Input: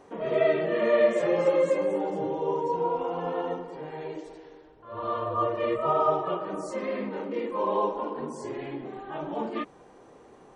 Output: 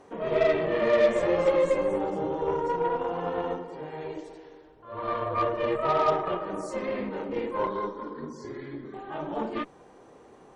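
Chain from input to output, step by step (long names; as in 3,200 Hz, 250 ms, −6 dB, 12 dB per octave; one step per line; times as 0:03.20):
0:07.67–0:08.94: phaser with its sweep stopped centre 2,700 Hz, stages 6
harmonic generator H 8 −25 dB, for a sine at −10.5 dBFS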